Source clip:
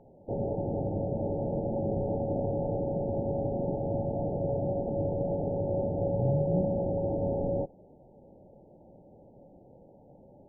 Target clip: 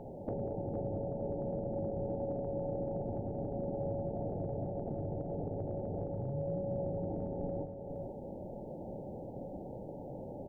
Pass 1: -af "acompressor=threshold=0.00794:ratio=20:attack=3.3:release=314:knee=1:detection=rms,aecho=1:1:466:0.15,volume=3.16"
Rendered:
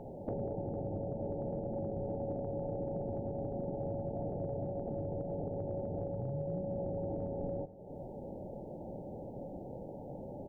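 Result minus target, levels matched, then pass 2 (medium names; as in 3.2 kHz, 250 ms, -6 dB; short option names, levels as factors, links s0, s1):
echo-to-direct -9.5 dB
-af "acompressor=threshold=0.00794:ratio=20:attack=3.3:release=314:knee=1:detection=rms,aecho=1:1:466:0.447,volume=3.16"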